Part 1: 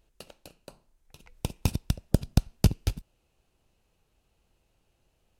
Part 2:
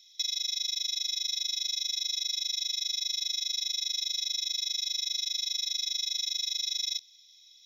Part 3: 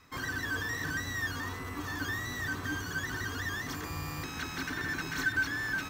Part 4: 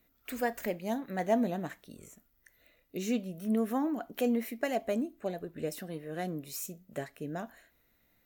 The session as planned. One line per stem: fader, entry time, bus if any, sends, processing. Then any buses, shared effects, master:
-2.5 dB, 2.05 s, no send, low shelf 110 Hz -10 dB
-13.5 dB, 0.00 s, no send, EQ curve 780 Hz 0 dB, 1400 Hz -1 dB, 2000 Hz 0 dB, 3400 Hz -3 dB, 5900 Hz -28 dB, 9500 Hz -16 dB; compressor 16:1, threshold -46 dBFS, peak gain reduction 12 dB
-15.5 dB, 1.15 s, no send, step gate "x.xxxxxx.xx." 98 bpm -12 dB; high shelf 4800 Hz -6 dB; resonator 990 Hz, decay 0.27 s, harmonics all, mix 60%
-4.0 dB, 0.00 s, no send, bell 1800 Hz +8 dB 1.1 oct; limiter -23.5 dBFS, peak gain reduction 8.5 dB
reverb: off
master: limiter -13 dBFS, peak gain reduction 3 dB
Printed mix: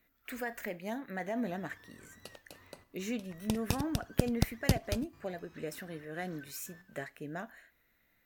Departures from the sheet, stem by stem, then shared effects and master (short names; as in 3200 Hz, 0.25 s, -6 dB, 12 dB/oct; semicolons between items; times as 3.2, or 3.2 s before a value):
stem 2: muted; master: missing limiter -13 dBFS, peak gain reduction 3 dB